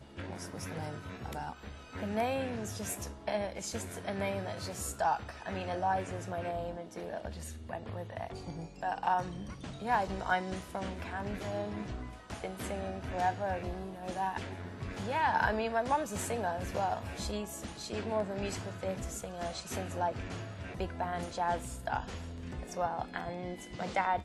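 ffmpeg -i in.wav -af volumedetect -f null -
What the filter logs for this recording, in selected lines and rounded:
mean_volume: -36.1 dB
max_volume: -15.8 dB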